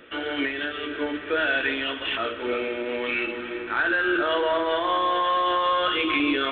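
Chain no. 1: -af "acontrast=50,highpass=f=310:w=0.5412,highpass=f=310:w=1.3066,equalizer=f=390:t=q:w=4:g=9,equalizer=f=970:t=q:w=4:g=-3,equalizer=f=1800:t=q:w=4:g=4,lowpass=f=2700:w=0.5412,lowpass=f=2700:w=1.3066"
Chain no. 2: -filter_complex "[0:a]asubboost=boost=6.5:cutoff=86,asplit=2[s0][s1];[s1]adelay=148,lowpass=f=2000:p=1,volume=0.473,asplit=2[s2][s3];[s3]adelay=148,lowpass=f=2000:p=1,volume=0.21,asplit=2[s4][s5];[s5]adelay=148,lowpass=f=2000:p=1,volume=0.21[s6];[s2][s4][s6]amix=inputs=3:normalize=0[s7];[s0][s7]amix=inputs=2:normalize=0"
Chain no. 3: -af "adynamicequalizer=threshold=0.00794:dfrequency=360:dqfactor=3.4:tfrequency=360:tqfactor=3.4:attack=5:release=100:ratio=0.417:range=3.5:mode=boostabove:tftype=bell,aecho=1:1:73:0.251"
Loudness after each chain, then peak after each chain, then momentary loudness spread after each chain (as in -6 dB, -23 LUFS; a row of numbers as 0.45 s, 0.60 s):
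-18.0 LUFS, -24.5 LUFS, -23.0 LUFS; -5.0 dBFS, -10.5 dBFS, -9.5 dBFS; 7 LU, 7 LU, 7 LU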